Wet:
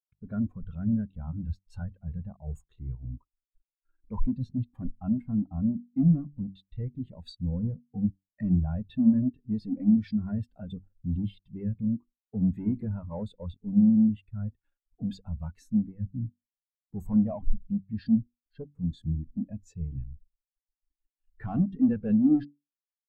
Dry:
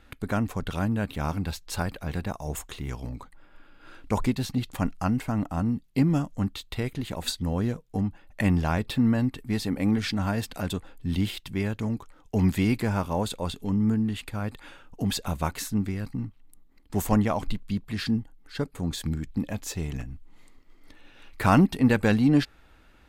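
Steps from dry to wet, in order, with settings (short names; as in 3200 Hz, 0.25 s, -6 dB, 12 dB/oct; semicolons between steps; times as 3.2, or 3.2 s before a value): sample leveller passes 5; de-hum 48.12 Hz, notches 8; spectral expander 2.5:1; gain -6.5 dB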